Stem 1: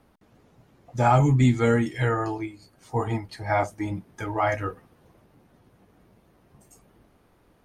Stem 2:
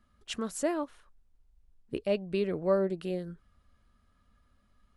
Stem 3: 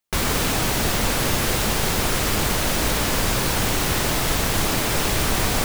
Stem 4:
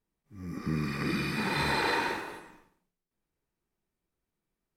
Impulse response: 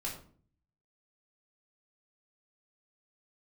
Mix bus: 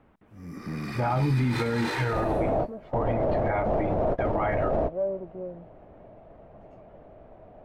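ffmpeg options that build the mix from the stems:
-filter_complex "[0:a]lowpass=f=2.8k:w=0.5412,lowpass=f=2.8k:w=1.3066,volume=1dB,asplit=2[a][b];[1:a]asoftclip=type=tanh:threshold=-29.5dB,adelay=2300,volume=-5.5dB[c];[2:a]adelay=2000,volume=2dB[d];[3:a]dynaudnorm=f=180:g=9:m=3dB,asoftclip=type=tanh:threshold=-25dB,volume=-1.5dB[e];[b]apad=whole_len=337058[f];[d][f]sidechaingate=range=-33dB:threshold=-46dB:ratio=16:detection=peak[g];[c][g]amix=inputs=2:normalize=0,lowpass=f=640:t=q:w=5.8,alimiter=limit=-17.5dB:level=0:latency=1:release=20,volume=0dB[h];[a][e][h]amix=inputs=3:normalize=0,alimiter=limit=-17.5dB:level=0:latency=1:release=64"

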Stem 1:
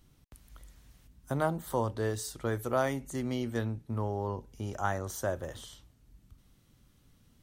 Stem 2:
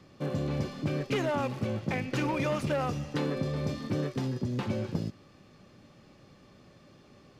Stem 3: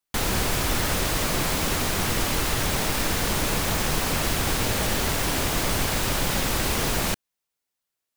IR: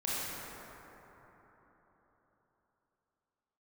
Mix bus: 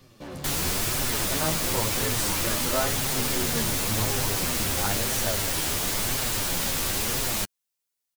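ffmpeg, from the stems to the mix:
-filter_complex "[0:a]volume=2.5dB[a];[1:a]asoftclip=type=hard:threshold=-35dB,volume=2.5dB[b];[2:a]adelay=300,volume=-3dB[c];[a][b][c]amix=inputs=3:normalize=0,highshelf=f=3.7k:g=9,flanger=delay=7.3:depth=5.9:regen=3:speed=0.97:shape=triangular"

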